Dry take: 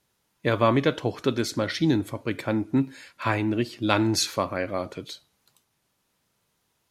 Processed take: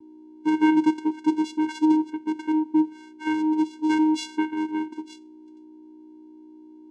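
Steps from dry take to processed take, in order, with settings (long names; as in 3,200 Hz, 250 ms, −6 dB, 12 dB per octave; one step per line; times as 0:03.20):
mains hum 60 Hz, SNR 16 dB
channel vocoder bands 4, square 311 Hz
level +2.5 dB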